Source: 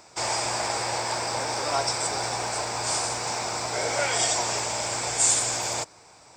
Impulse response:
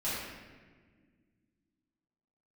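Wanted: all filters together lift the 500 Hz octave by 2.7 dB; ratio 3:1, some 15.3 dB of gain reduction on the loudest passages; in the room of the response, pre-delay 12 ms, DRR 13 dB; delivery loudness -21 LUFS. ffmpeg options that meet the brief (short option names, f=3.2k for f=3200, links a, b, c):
-filter_complex "[0:a]equalizer=f=500:t=o:g=3.5,acompressor=threshold=-39dB:ratio=3,asplit=2[a][b];[1:a]atrim=start_sample=2205,adelay=12[c];[b][c]afir=irnorm=-1:irlink=0,volume=-19.5dB[d];[a][d]amix=inputs=2:normalize=0,volume=15.5dB"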